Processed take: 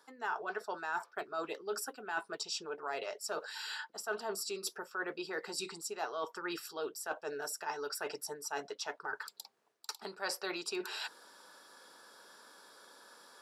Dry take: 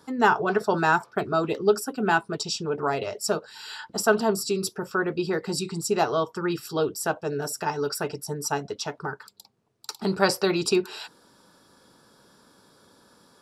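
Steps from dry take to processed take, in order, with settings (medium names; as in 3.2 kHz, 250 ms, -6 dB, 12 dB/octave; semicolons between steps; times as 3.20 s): high-pass 530 Hz 12 dB/octave; peaking EQ 1.7 kHz +4 dB 0.47 oct; reverse; compression 4:1, threshold -39 dBFS, peak gain reduction 20.5 dB; reverse; trim +1 dB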